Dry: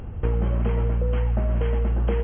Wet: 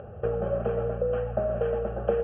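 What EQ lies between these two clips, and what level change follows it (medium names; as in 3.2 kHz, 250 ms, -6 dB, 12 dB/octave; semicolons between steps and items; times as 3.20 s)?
cabinet simulation 140–2400 Hz, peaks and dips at 240 Hz +5 dB, 400 Hz +5 dB, 570 Hz +9 dB, 810 Hz +8 dB; static phaser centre 1.4 kHz, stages 8; 0.0 dB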